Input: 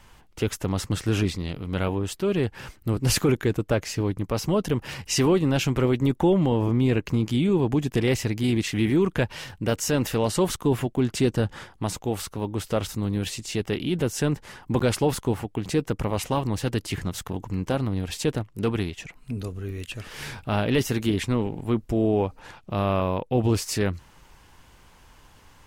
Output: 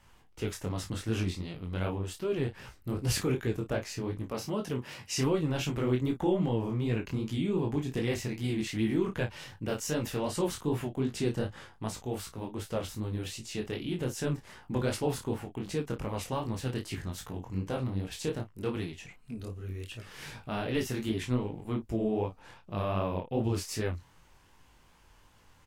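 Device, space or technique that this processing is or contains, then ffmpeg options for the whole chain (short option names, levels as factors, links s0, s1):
double-tracked vocal: -filter_complex "[0:a]asplit=2[s0][s1];[s1]adelay=32,volume=0.355[s2];[s0][s2]amix=inputs=2:normalize=0,flanger=delay=17.5:depth=6.4:speed=2.6,asettb=1/sr,asplit=3[s3][s4][s5];[s3]atrim=end=4.304[s6];[s4]atrim=start=4.3:end=5.18,asetpts=PTS-STARTPTS,afade=t=in:d=0.004:c=qsin,afade=t=out:st=0.876:d=0.004:c=qsin,highpass=f=140:p=1[s7];[s5]atrim=start=5.176[s8];[s6][s7]acrossfade=d=0.004:c1=hsin:c2=qsin[s9];[s9][s8]acrossfade=d=0.004:c1=qsin:c2=hsin,volume=0.531"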